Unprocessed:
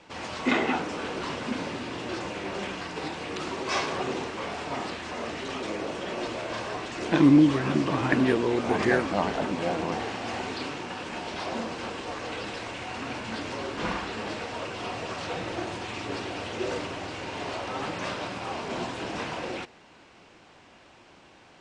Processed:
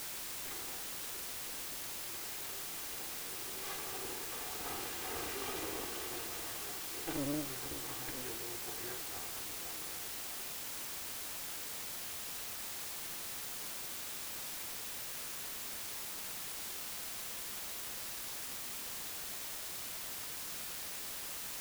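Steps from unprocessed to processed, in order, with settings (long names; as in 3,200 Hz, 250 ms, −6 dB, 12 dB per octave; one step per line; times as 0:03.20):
lower of the sound and its delayed copy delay 2.5 ms
source passing by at 0:05.28, 5 m/s, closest 2.6 metres
bit-depth reduction 6 bits, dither triangular
level −7 dB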